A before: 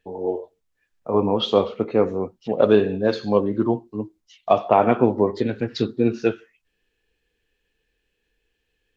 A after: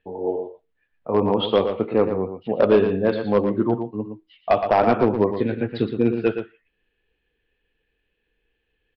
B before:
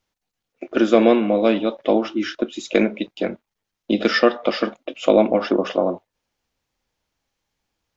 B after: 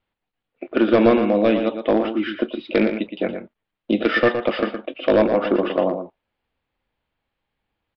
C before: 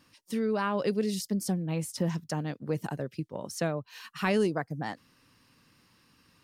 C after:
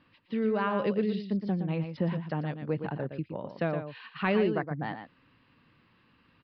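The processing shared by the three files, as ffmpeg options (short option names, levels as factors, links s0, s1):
-filter_complex "[0:a]lowpass=f=3400:w=0.5412,lowpass=f=3400:w=1.3066,aresample=11025,volume=2.82,asoftclip=hard,volume=0.355,aresample=44100,asplit=2[s0][s1];[s1]adelay=116.6,volume=0.398,highshelf=f=4000:g=-2.62[s2];[s0][s2]amix=inputs=2:normalize=0"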